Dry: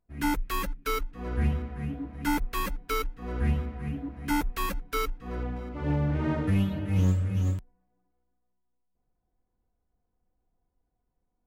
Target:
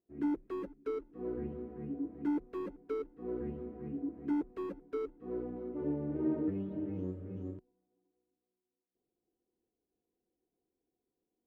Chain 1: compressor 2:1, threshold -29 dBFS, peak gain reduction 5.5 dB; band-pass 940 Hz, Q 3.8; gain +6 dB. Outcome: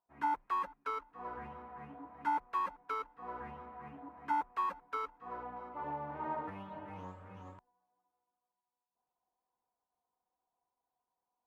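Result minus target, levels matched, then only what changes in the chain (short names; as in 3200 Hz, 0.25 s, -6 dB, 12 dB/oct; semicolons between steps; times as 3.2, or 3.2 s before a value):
1000 Hz band +17.0 dB
change: band-pass 360 Hz, Q 3.8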